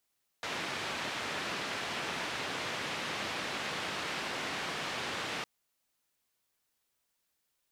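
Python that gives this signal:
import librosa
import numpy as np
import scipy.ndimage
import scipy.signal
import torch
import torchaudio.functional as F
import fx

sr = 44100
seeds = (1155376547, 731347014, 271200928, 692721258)

y = fx.band_noise(sr, seeds[0], length_s=5.01, low_hz=120.0, high_hz=2900.0, level_db=-37.0)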